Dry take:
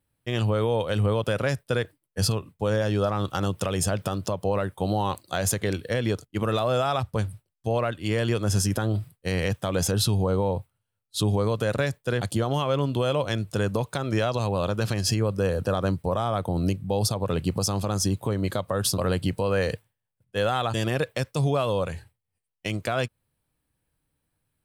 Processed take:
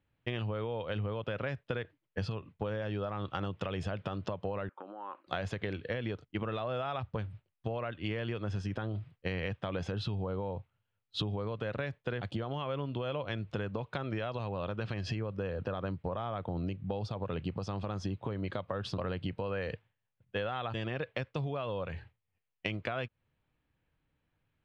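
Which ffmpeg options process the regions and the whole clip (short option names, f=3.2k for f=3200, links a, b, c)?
-filter_complex "[0:a]asettb=1/sr,asplit=3[a][b][c];[a]atrim=end=4.694[d];[b]atrim=start=4.69:end=5.27,asetpts=PTS-STARTPTS,afade=t=in:d=0.004:c=qsin,afade=t=out:st=0.576:d=0.004:c=qsin,acompressor=threshold=-32dB:ratio=12:attack=3.2:release=140:knee=1:detection=peak,highpass=f=320:w=0.5412,highpass=f=320:w=1.3066,equalizer=f=430:t=q:w=4:g=-10,equalizer=f=700:t=q:w=4:g=-8,equalizer=f=1.3k:t=q:w=4:g=5,equalizer=f=2k:t=q:w=4:g=-8,lowpass=f=2.1k:w=0.5412,lowpass=f=2.1k:w=1.3066[e];[c]atrim=start=5.266[f];[d][e]acrossfade=d=0.004:c1=hsin:c2=qsin[g];[g][f]acrossfade=d=0.004:c1=qsin:c2=hsin,lowpass=f=2.9k:w=0.5412,lowpass=f=2.9k:w=1.3066,acompressor=threshold=-32dB:ratio=6,aemphasis=mode=production:type=75fm"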